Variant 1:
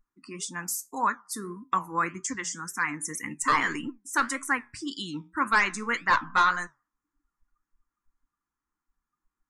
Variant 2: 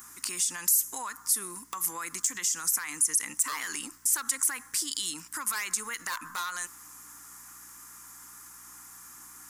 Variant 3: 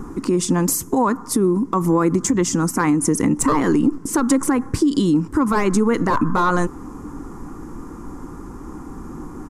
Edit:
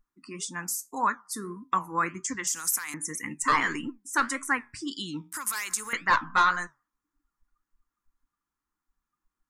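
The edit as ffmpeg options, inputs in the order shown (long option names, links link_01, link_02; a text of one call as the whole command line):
ffmpeg -i take0.wav -i take1.wav -filter_complex "[1:a]asplit=2[link_01][link_02];[0:a]asplit=3[link_03][link_04][link_05];[link_03]atrim=end=2.472[link_06];[link_01]atrim=start=2.468:end=2.942[link_07];[link_04]atrim=start=2.938:end=5.322[link_08];[link_02]atrim=start=5.318:end=5.932[link_09];[link_05]atrim=start=5.928[link_10];[link_06][link_07]acrossfade=duration=0.004:curve1=hsin:curve2=hsin[link_11];[link_11][link_08]acrossfade=duration=0.004:curve1=hsin:curve2=hsin[link_12];[link_12][link_09]acrossfade=duration=0.004:curve1=hsin:curve2=hsin[link_13];[link_13][link_10]acrossfade=duration=0.004:curve1=hsin:curve2=hsin" out.wav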